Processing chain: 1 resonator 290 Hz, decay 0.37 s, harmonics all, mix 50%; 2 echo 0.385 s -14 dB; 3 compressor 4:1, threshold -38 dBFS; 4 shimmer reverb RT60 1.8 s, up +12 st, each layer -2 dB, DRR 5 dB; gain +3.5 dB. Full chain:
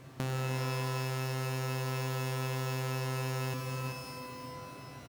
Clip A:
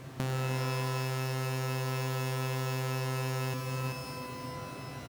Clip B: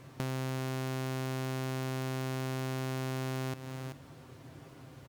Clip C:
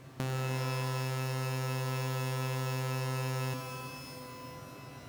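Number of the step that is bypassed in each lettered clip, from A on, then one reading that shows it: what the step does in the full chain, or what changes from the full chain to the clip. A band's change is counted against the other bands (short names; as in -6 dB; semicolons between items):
1, momentary loudness spread change -2 LU; 4, momentary loudness spread change +6 LU; 2, momentary loudness spread change +2 LU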